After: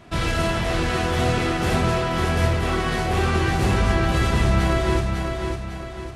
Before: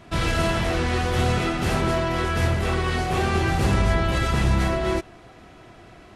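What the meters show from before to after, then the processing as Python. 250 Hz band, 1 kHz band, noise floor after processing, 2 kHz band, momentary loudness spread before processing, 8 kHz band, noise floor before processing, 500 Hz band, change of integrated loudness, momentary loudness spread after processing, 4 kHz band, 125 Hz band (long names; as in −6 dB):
+1.5 dB, +1.5 dB, −33 dBFS, +1.5 dB, 3 LU, +1.5 dB, −48 dBFS, +1.5 dB, +1.0 dB, 6 LU, +1.5 dB, +1.5 dB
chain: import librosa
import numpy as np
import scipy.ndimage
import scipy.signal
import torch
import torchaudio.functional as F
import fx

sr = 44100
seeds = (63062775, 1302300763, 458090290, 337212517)

y = fx.echo_feedback(x, sr, ms=551, feedback_pct=44, wet_db=-5)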